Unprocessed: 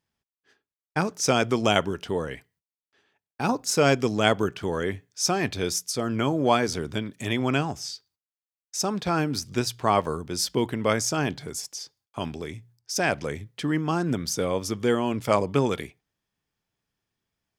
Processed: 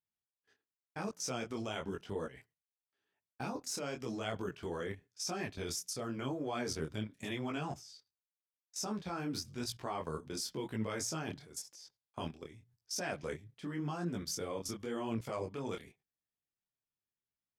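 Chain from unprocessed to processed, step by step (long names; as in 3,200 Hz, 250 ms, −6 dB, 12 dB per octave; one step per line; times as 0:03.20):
output level in coarse steps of 16 dB
tape wow and flutter 16 cents
micro pitch shift up and down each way 32 cents
level −2.5 dB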